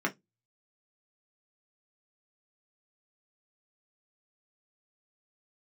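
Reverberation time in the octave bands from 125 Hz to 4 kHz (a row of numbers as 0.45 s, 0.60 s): 0.30 s, 0.25 s, 0.15 s, 0.15 s, 0.15 s, 0.15 s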